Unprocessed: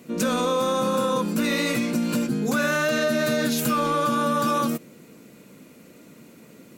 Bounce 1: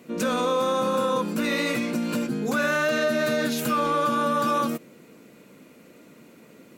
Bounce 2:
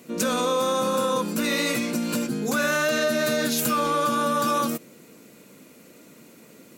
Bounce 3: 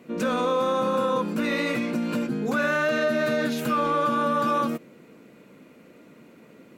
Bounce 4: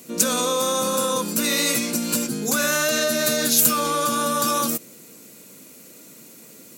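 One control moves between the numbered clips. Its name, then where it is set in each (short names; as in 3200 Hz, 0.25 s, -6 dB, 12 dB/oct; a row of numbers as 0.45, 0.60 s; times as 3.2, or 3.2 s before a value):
tone controls, treble: -5, +3, -13, +14 dB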